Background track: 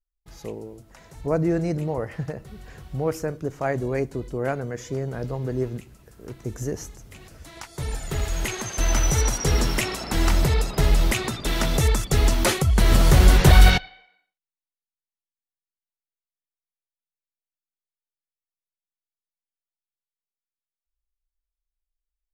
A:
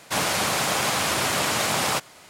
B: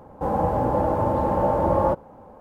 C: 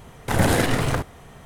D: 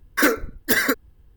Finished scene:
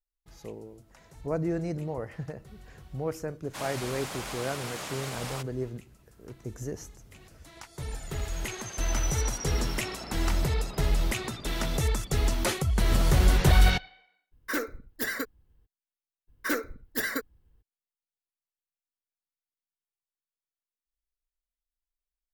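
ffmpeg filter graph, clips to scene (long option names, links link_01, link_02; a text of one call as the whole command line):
ffmpeg -i bed.wav -i cue0.wav -i cue1.wav -i cue2.wav -i cue3.wav -filter_complex "[4:a]asplit=2[link_01][link_02];[0:a]volume=-7dB[link_03];[link_01]acontrast=70[link_04];[1:a]atrim=end=2.29,asetpts=PTS-STARTPTS,volume=-14.5dB,afade=type=in:duration=0.004:curve=hsin,afade=type=out:start_time=2.286:duration=0.004:curve=hsin,adelay=3430[link_05];[link_04]atrim=end=1.36,asetpts=PTS-STARTPTS,volume=-18dB,afade=type=in:duration=0.02,afade=type=out:start_time=1.34:duration=0.02,adelay=14310[link_06];[link_02]atrim=end=1.36,asetpts=PTS-STARTPTS,volume=-11dB,afade=type=in:duration=0.02,afade=type=out:start_time=1.34:duration=0.02,adelay=16270[link_07];[link_03][link_05][link_06][link_07]amix=inputs=4:normalize=0" out.wav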